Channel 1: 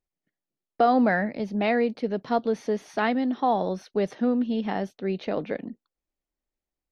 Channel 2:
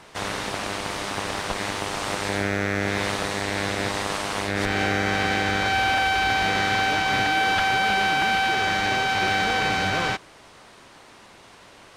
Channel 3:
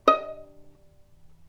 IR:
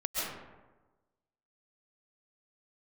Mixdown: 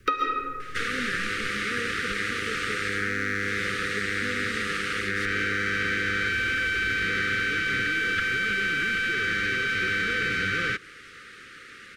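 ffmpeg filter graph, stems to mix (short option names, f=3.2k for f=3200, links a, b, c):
-filter_complex "[0:a]volume=-12.5dB[a];[1:a]asoftclip=type=tanh:threshold=-12dB,adelay=600,volume=-2.5dB[b];[2:a]alimiter=limit=-13dB:level=0:latency=1:release=279,volume=1dB,asplit=2[c][d];[d]volume=-3dB[e];[3:a]atrim=start_sample=2205[f];[e][f]afir=irnorm=-1:irlink=0[g];[a][b][c][g]amix=inputs=4:normalize=0,equalizer=f=1.8k:t=o:w=1.5:g=11.5,acrossover=split=560|1400|4500[h][i][j][k];[h]acompressor=threshold=-31dB:ratio=4[l];[i]acompressor=threshold=-31dB:ratio=4[m];[j]acompressor=threshold=-29dB:ratio=4[n];[k]acompressor=threshold=-44dB:ratio=4[o];[l][m][n][o]amix=inputs=4:normalize=0,asuperstop=centerf=790:order=20:qfactor=1.2"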